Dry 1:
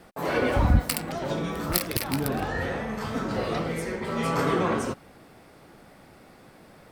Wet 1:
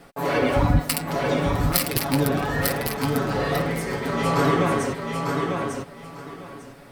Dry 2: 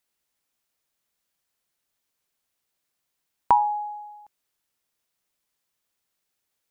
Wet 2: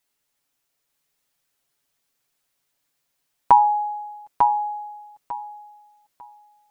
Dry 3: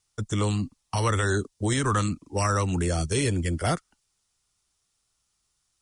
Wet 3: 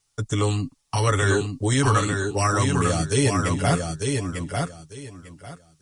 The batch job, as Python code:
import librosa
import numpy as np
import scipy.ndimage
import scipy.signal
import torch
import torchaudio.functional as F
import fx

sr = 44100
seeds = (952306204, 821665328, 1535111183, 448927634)

p1 = x + 0.62 * np.pad(x, (int(7.1 * sr / 1000.0), 0))[:len(x)]
p2 = p1 + fx.echo_feedback(p1, sr, ms=898, feedback_pct=21, wet_db=-4.5, dry=0)
y = p2 * 10.0 ** (2.0 / 20.0)